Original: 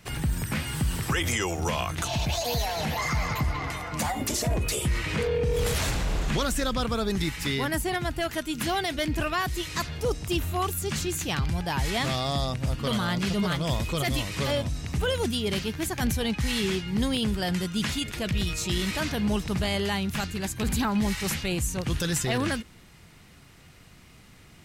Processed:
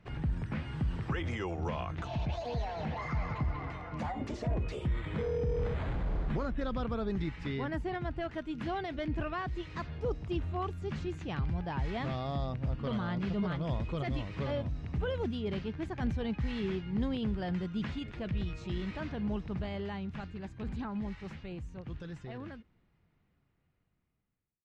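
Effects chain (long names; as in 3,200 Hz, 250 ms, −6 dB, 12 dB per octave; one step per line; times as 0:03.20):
fade-out on the ending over 6.94 s
0:04.87–0:06.61: bad sample-rate conversion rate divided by 8×, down filtered, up hold
head-to-tape spacing loss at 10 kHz 36 dB
level −5 dB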